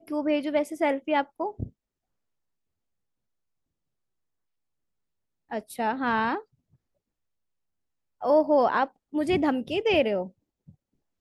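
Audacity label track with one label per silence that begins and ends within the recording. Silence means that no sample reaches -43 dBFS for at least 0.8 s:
1.680000	5.510000	silence
6.420000	8.220000	silence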